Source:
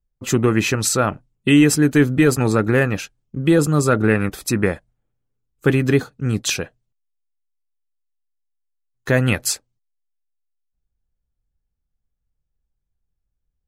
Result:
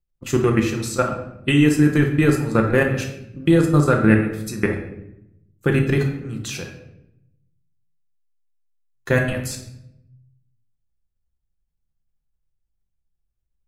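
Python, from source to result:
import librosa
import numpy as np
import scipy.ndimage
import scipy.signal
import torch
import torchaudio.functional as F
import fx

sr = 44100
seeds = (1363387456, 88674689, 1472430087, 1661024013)

y = fx.level_steps(x, sr, step_db=16)
y = fx.room_shoebox(y, sr, seeds[0], volume_m3=240.0, walls='mixed', distance_m=0.86)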